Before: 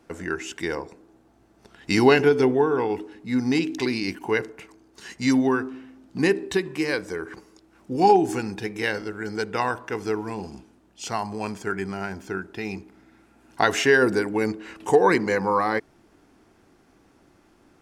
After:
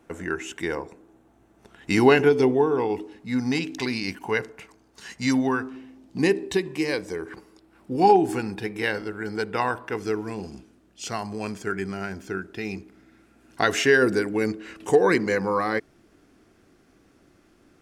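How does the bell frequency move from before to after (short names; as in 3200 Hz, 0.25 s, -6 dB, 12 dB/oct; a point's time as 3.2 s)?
bell -7.5 dB 0.48 oct
4800 Hz
from 2.3 s 1500 Hz
from 3.16 s 340 Hz
from 5.76 s 1400 Hz
from 7.29 s 6300 Hz
from 9.97 s 890 Hz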